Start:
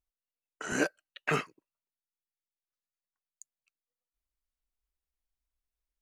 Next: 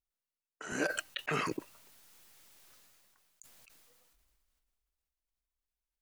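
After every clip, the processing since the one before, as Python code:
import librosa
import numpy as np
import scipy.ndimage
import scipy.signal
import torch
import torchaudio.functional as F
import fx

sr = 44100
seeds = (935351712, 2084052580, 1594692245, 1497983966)

y = fx.sustainer(x, sr, db_per_s=21.0)
y = y * 10.0 ** (-5.5 / 20.0)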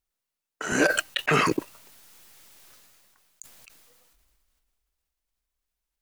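y = fx.leveller(x, sr, passes=1)
y = y * 10.0 ** (8.5 / 20.0)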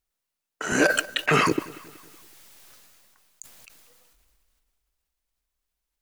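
y = fx.echo_feedback(x, sr, ms=187, feedback_pct=48, wet_db=-20)
y = y * 10.0 ** (1.5 / 20.0)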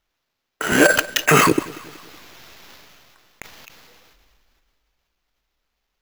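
y = fx.sample_hold(x, sr, seeds[0], rate_hz=9100.0, jitter_pct=0)
y = y * 10.0 ** (6.5 / 20.0)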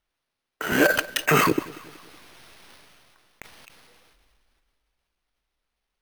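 y = np.repeat(scipy.signal.resample_poly(x, 1, 3), 3)[:len(x)]
y = y * 10.0 ** (-5.0 / 20.0)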